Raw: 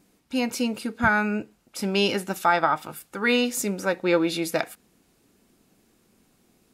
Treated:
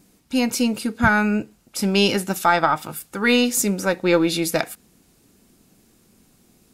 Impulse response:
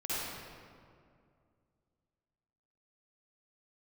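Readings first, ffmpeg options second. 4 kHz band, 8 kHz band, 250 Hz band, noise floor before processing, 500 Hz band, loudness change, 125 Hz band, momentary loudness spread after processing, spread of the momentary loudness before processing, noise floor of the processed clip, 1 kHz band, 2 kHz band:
+5.0 dB, +7.5 dB, +5.5 dB, -65 dBFS, +3.5 dB, +4.5 dB, +6.5 dB, 8 LU, 10 LU, -59 dBFS, +3.0 dB, +3.0 dB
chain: -af "aeval=exprs='0.473*(cos(1*acos(clip(val(0)/0.473,-1,1)))-cos(1*PI/2))+0.0299*(cos(2*acos(clip(val(0)/0.473,-1,1)))-cos(2*PI/2))+0.0168*(cos(4*acos(clip(val(0)/0.473,-1,1)))-cos(4*PI/2))':c=same,bass=f=250:g=5,treble=f=4k:g=5,volume=3dB"

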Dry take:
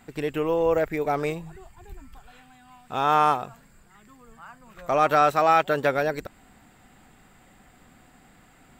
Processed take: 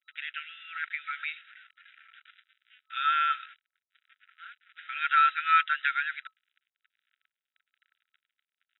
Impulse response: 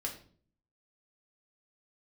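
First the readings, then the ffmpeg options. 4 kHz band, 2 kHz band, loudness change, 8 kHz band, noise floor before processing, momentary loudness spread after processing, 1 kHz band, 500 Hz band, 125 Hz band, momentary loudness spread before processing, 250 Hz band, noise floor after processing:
+1.5 dB, +2.0 dB, -4.5 dB, n/a, -56 dBFS, 17 LU, -5.5 dB, under -40 dB, under -40 dB, 15 LU, under -40 dB, under -85 dBFS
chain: -af "acrusher=bits=6:mix=0:aa=0.5,afftfilt=real='re*between(b*sr/4096,1300,3900)':imag='im*between(b*sr/4096,1300,3900)':win_size=4096:overlap=0.75,volume=2dB"

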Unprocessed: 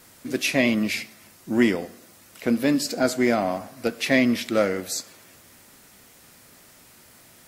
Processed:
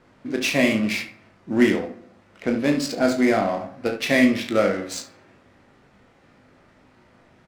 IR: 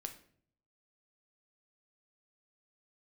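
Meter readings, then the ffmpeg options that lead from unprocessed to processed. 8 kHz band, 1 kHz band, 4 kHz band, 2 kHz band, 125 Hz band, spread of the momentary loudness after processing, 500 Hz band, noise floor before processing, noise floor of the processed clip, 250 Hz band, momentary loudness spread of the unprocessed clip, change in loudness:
-2.5 dB, +2.0 dB, +0.5 dB, +1.5 dB, +1.5 dB, 12 LU, +2.0 dB, -52 dBFS, -57 dBFS, +1.5 dB, 10 LU, +1.5 dB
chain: -filter_complex "[0:a]aecho=1:1:36|71:0.422|0.355,adynamicsmooth=sensitivity=5:basefreq=1.9k,asplit=2[a][b];[1:a]atrim=start_sample=2205,adelay=20[c];[b][c]afir=irnorm=-1:irlink=0,volume=-4.5dB[d];[a][d]amix=inputs=2:normalize=0"

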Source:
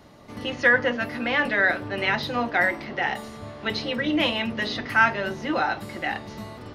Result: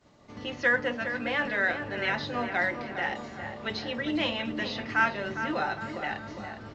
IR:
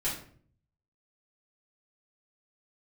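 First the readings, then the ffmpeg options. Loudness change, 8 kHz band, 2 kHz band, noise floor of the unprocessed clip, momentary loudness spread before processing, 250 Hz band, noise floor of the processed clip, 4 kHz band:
-5.5 dB, n/a, -5.5 dB, -41 dBFS, 13 LU, -5.0 dB, -46 dBFS, -6.0 dB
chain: -filter_complex "[0:a]asplit=2[a][b];[b]adelay=408,lowpass=f=2.3k:p=1,volume=-8dB,asplit=2[c][d];[d]adelay=408,lowpass=f=2.3k:p=1,volume=0.55,asplit=2[e][f];[f]adelay=408,lowpass=f=2.3k:p=1,volume=0.55,asplit=2[g][h];[h]adelay=408,lowpass=f=2.3k:p=1,volume=0.55,asplit=2[i][j];[j]adelay=408,lowpass=f=2.3k:p=1,volume=0.55,asplit=2[k][l];[l]adelay=408,lowpass=f=2.3k:p=1,volume=0.55,asplit=2[m][n];[n]adelay=408,lowpass=f=2.3k:p=1,volume=0.55[o];[a][c][e][g][i][k][m][o]amix=inputs=8:normalize=0,agate=range=-33dB:threshold=-46dB:ratio=3:detection=peak,volume=-6dB" -ar 16000 -c:a pcm_alaw

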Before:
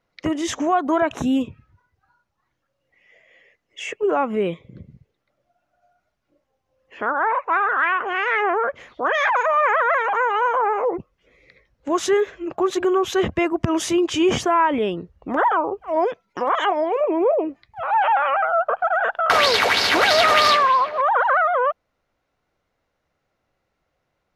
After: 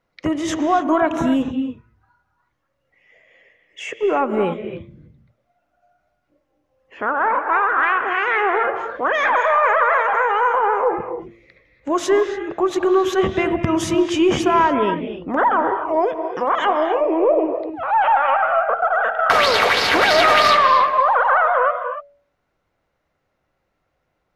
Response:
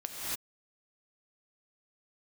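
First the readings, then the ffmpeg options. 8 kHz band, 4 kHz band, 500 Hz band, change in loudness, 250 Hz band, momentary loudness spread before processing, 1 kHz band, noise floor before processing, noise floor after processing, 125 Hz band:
-1.5 dB, -0.5 dB, +2.5 dB, +2.0 dB, +2.5 dB, 10 LU, +2.5 dB, -75 dBFS, -72 dBFS, +2.5 dB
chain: -filter_complex "[0:a]bandreject=f=114.4:t=h:w=4,bandreject=f=228.8:t=h:w=4,bandreject=f=343.2:t=h:w=4,bandreject=f=457.6:t=h:w=4,bandreject=f=572:t=h:w=4,bandreject=f=686.4:t=h:w=4,aeval=exprs='0.708*(cos(1*acos(clip(val(0)/0.708,-1,1)))-cos(1*PI/2))+0.0126*(cos(2*acos(clip(val(0)/0.708,-1,1)))-cos(2*PI/2))+0.0141*(cos(4*acos(clip(val(0)/0.708,-1,1)))-cos(4*PI/2))':c=same,asplit=2[a][b];[1:a]atrim=start_sample=2205,lowpass=3.2k[c];[b][c]afir=irnorm=-1:irlink=0,volume=-6.5dB[d];[a][d]amix=inputs=2:normalize=0,volume=-1dB"

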